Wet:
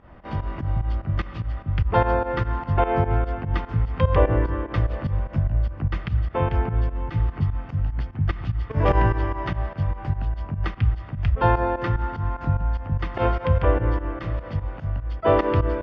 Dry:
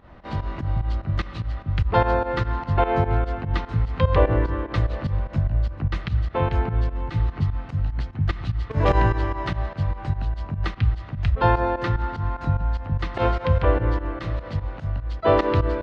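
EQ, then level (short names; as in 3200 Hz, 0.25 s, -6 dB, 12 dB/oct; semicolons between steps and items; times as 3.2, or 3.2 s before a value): air absorption 120 m; notch 4000 Hz, Q 5.7; 0.0 dB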